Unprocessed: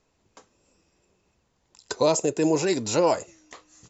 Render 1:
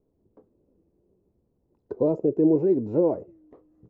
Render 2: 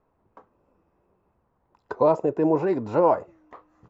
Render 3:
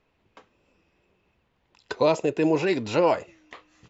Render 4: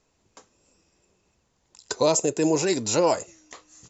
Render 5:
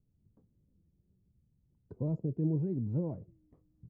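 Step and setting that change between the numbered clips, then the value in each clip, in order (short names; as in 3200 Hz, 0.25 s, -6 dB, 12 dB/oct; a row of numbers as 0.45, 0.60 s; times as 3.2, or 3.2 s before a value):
synth low-pass, frequency: 390, 1100, 2800, 7900, 150 Hz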